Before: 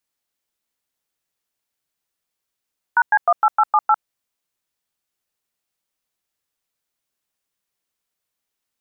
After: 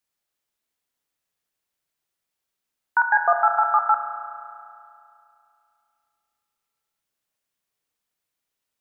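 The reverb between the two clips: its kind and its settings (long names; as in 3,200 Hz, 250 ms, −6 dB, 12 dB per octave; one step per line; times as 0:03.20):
spring reverb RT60 2.6 s, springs 33 ms, chirp 35 ms, DRR 4 dB
level −2 dB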